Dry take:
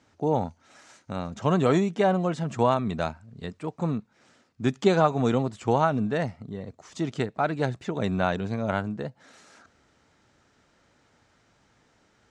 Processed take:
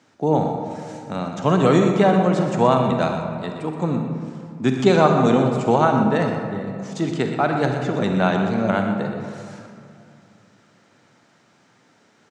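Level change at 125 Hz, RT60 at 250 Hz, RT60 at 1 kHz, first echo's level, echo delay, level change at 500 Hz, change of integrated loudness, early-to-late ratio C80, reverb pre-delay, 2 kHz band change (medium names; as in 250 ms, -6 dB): +6.5 dB, 3.0 s, 2.4 s, -10.0 dB, 123 ms, +7.0 dB, +6.5 dB, 4.5 dB, 39 ms, +6.5 dB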